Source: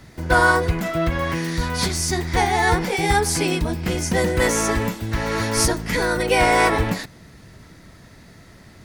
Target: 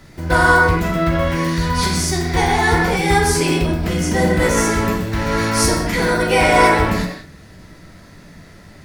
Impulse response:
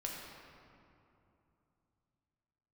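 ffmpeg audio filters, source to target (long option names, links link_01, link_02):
-filter_complex "[1:a]atrim=start_sample=2205,afade=type=out:start_time=0.26:duration=0.01,atrim=end_sample=11907[link_01];[0:a][link_01]afir=irnorm=-1:irlink=0,asplit=3[link_02][link_03][link_04];[link_02]afade=type=out:start_time=3.65:duration=0.02[link_05];[link_03]adynamicequalizer=threshold=0.02:dfrequency=1800:dqfactor=0.7:tfrequency=1800:tqfactor=0.7:attack=5:release=100:ratio=0.375:range=1.5:mode=cutabove:tftype=highshelf,afade=type=in:start_time=3.65:duration=0.02,afade=type=out:start_time=4.56:duration=0.02[link_06];[link_04]afade=type=in:start_time=4.56:duration=0.02[link_07];[link_05][link_06][link_07]amix=inputs=3:normalize=0,volume=4dB"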